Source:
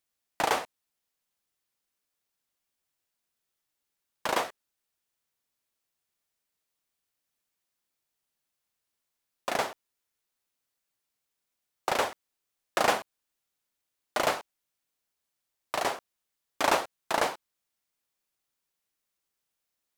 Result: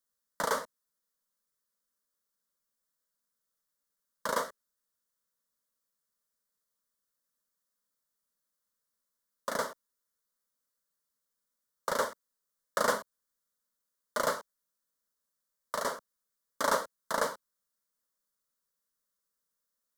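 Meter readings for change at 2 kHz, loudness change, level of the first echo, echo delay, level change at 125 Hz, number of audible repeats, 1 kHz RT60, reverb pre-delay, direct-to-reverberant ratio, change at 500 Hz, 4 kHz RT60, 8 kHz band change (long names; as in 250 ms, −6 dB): −4.0 dB, −3.5 dB, no echo audible, no echo audible, −4.0 dB, no echo audible, no reverb audible, no reverb audible, no reverb audible, −2.5 dB, no reverb audible, −1.5 dB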